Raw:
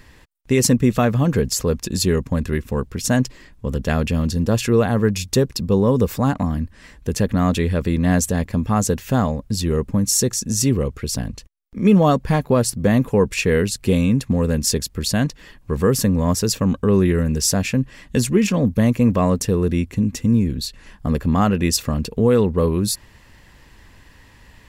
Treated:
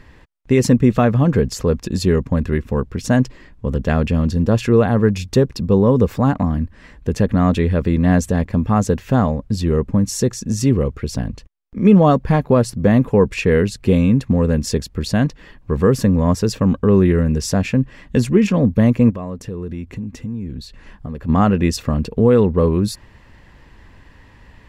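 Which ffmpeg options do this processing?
-filter_complex "[0:a]asplit=3[a][b][c];[a]afade=t=out:st=19.09:d=0.02[d];[b]acompressor=threshold=-30dB:ratio=3:attack=3.2:release=140:knee=1:detection=peak,afade=t=in:st=19.09:d=0.02,afade=t=out:st=21.28:d=0.02[e];[c]afade=t=in:st=21.28:d=0.02[f];[d][e][f]amix=inputs=3:normalize=0,lowpass=f=2k:p=1,volume=3dB"

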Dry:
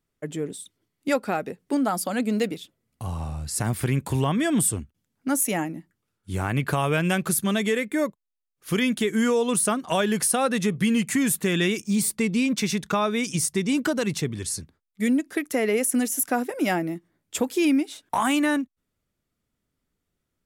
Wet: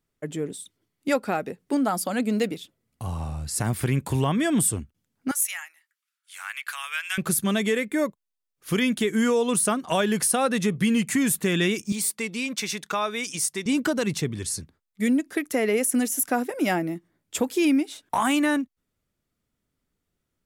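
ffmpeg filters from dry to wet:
-filter_complex "[0:a]asettb=1/sr,asplit=3[a][b][c];[a]atrim=end=5.314[d];[b]atrim=start=5.31:end=7.18,asetpts=PTS-STARTPTS,afade=t=in:d=0.004:c=qsin,afade=t=out:st=1.866:d=0.004:c=qsin,highpass=f=1.4k:w=0.5412,highpass=f=1.4k:w=1.3066[e];[c]atrim=start=7.176[f];[d][e]acrossfade=d=0.004:c1=hsin:c2=qsin[g];[g][f]acrossfade=d=0.004:c1=qsin:c2=hsin,asettb=1/sr,asplit=3[h][i][j];[h]atrim=end=11.924[k];[i]atrim=start=11.92:end=13.66,asetpts=PTS-STARTPTS,afade=t=in:d=0.004:c=qsin,afade=t=out:st=1.736:d=0.004:c=qsin,highpass=f=680:p=1[l];[j]atrim=start=13.656[m];[k][l]acrossfade=d=0.004:c1=hsin:c2=qsin[n];[n][m]acrossfade=d=0.004:c1=qsin:c2=hsin"

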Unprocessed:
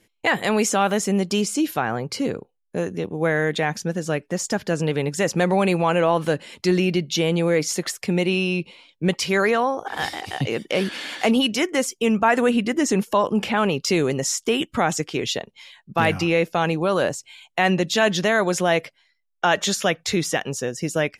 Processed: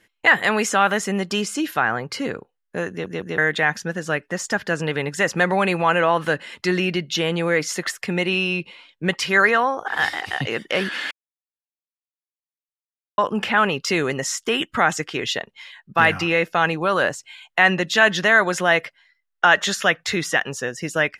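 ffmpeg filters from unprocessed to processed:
-filter_complex "[0:a]asplit=6[a][b][c][d][e][f];[a]atrim=end=3.062[g];[b]atrim=start=2.898:end=3.062[h];[c]atrim=start=2.898:end=3.062[i];[d]atrim=start=3.378:end=11.11,asetpts=PTS-STARTPTS,afade=t=out:st=7.728:d=0.004:c=hsin[j];[e]atrim=start=11.11:end=13.18,asetpts=PTS-STARTPTS,volume=0[k];[f]atrim=start=13.18,asetpts=PTS-STARTPTS,afade=t=in:d=0.004:c=hsin[l];[g][h]acrossfade=d=0.004:c1=hsin:c2=hsin[m];[m][i]acrossfade=d=0.004:c1=hsin:c2=hsin[n];[j][k][l]concat=n=3:v=0:a=1[o];[n][o]acrossfade=d=0.004:c1=hsin:c2=hsin,equalizer=f=1.7k:w=0.77:g=12,bandreject=f=2.3k:w=12,volume=-3.5dB"

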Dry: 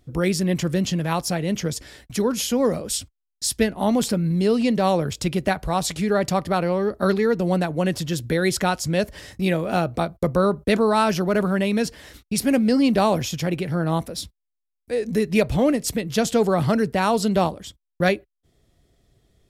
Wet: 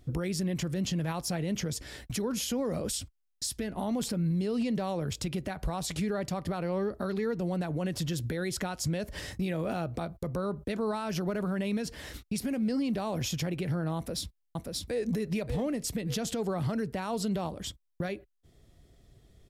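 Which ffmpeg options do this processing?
-filter_complex "[0:a]asplit=2[a][b];[b]afade=t=in:st=13.97:d=0.01,afade=t=out:st=15.09:d=0.01,aecho=0:1:580|1160|1740:0.595662|0.0893493|0.0134024[c];[a][c]amix=inputs=2:normalize=0,lowshelf=f=190:g=4,acompressor=threshold=-20dB:ratio=6,alimiter=limit=-23.5dB:level=0:latency=1:release=188"

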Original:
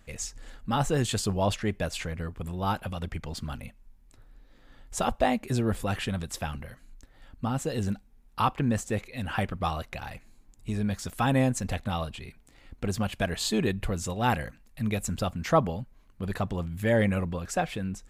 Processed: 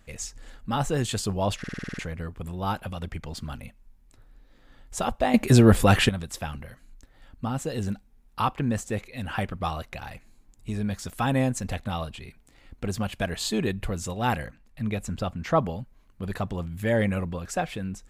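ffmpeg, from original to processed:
-filter_complex "[0:a]asettb=1/sr,asplit=3[a][b][c];[a]atrim=end=14.464[d];[b]atrim=start=14.46:end=15.58,asetpts=PTS-STARTPTS,afade=t=in:d=0.004:c=qsin,afade=t=out:st=1.116:d=0.004:c=qsin,highshelf=f=5.8k:g=-10[e];[c]atrim=start=15.576[f];[d][e]acrossfade=d=0.004:c1=hsin:c2=qsin[g];[g][f]acrossfade=d=0.004:c1=qsin:c2=hsin,asplit=11[h][i][j][k][l][m][n][o][p][q][r];[h]atrim=end=1.642[s];[i]atrim=start=1.588:end=1.642[t];[j]atrim=start=1.588:end=1.642[u];[k]atrim=start=1.588:end=1.642[v];[l]atrim=start=1.588:end=1.642[w];[m]atrim=start=1.588:end=1.642[x];[n]atrim=start=1.588:end=1.642[y];[o]atrim=start=1.588:end=1.642[z];[p]atrim=start=1.988:end=5.342[aa];[q]atrim=start=5.338:end=6.092,asetpts=PTS-STARTPTS,volume=11.5dB[ab];[r]atrim=start=6.088[ac];[s][t]acrossfade=d=0.004:c1=hsin:c2=hsin[ad];[ad][u]acrossfade=d=0.004:c1=hsin:c2=hsin[ae];[ae][v]acrossfade=d=0.004:c1=hsin:c2=hsin[af];[af][w]acrossfade=d=0.004:c1=hsin:c2=hsin[ag];[ag][x]acrossfade=d=0.004:c1=hsin:c2=hsin[ah];[ah][y]acrossfade=d=0.004:c1=hsin:c2=hsin[ai];[ai][z]acrossfade=d=0.004:c1=hsin:c2=hsin[aj];[aj][aa]acrossfade=d=0.004:c1=hsin:c2=hsin[ak];[ak][ab]acrossfade=d=0.004:c1=hsin:c2=hsin[al];[al][ac]acrossfade=d=0.004:c1=hsin:c2=hsin"

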